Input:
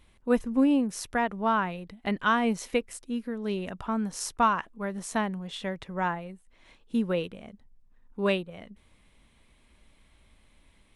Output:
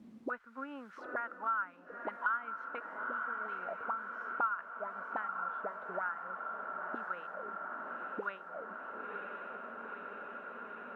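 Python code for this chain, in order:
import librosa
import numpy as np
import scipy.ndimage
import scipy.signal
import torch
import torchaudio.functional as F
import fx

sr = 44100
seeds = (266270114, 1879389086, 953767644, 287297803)

p1 = scipy.signal.sosfilt(scipy.signal.butter(2, 2900.0, 'lowpass', fs=sr, output='sos'), x)
p2 = fx.quant_dither(p1, sr, seeds[0], bits=8, dither='triangular')
p3 = p1 + (p2 * 10.0 ** (-4.0 / 20.0))
p4 = fx.auto_wah(p3, sr, base_hz=210.0, top_hz=1400.0, q=13.0, full_db=-22.0, direction='up')
p5 = p4 + fx.echo_diffused(p4, sr, ms=955, feedback_pct=65, wet_db=-9.0, dry=0)
p6 = fx.band_squash(p5, sr, depth_pct=70)
y = p6 * 10.0 ** (2.0 / 20.0)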